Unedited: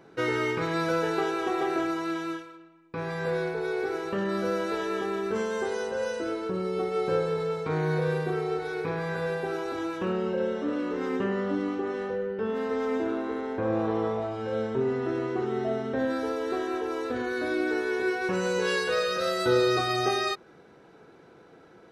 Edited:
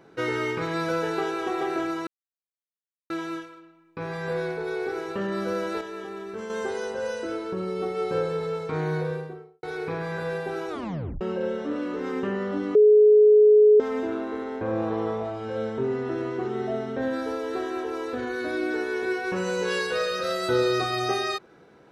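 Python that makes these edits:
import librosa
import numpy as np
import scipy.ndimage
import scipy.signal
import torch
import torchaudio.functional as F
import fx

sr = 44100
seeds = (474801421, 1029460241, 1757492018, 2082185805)

y = fx.studio_fade_out(x, sr, start_s=7.82, length_s=0.78)
y = fx.edit(y, sr, fx.insert_silence(at_s=2.07, length_s=1.03),
    fx.clip_gain(start_s=4.78, length_s=0.69, db=-6.5),
    fx.tape_stop(start_s=9.66, length_s=0.52),
    fx.bleep(start_s=11.72, length_s=1.05, hz=423.0, db=-11.5), tone=tone)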